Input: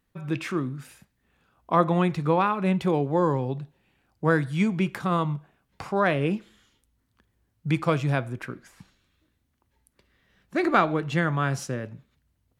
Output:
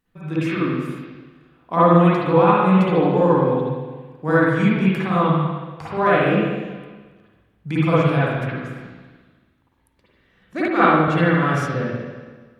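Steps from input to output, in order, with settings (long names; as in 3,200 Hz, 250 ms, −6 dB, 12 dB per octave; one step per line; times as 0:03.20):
spring reverb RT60 1.4 s, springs 48/52/58 ms, chirp 25 ms, DRR −9.5 dB
0:10.68–0:11.08: multiband upward and downward expander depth 100%
level −3 dB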